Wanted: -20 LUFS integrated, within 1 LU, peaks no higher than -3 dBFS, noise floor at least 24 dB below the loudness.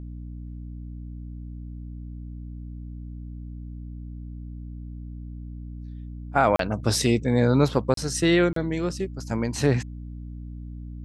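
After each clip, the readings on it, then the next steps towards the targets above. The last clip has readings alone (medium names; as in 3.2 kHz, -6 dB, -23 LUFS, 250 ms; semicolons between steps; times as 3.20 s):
dropouts 3; longest dropout 33 ms; hum 60 Hz; highest harmonic 300 Hz; hum level -34 dBFS; loudness -23.5 LUFS; peak level -6.5 dBFS; loudness target -20.0 LUFS
-> interpolate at 6.56/7.94/8.53 s, 33 ms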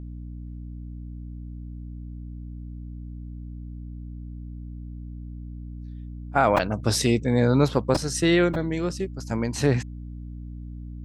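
dropouts 0; hum 60 Hz; highest harmonic 300 Hz; hum level -34 dBFS
-> de-hum 60 Hz, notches 5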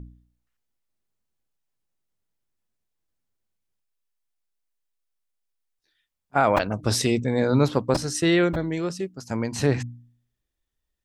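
hum not found; loudness -23.5 LUFS; peak level -7.0 dBFS; loudness target -20.0 LUFS
-> trim +3.5 dB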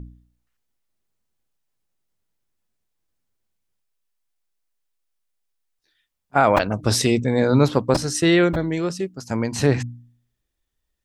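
loudness -20.0 LUFS; peak level -3.5 dBFS; noise floor -78 dBFS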